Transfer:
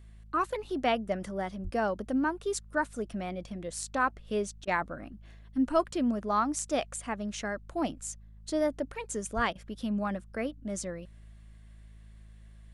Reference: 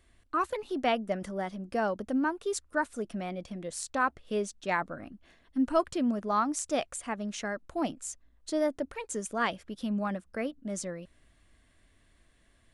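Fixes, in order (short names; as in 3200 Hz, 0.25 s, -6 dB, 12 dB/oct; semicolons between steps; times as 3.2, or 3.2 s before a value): de-hum 53.3 Hz, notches 4; 1.63–1.75 HPF 140 Hz 24 dB/oct; 9.35–9.47 HPF 140 Hz 24 dB/oct; interpolate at 4.65/9.53, 22 ms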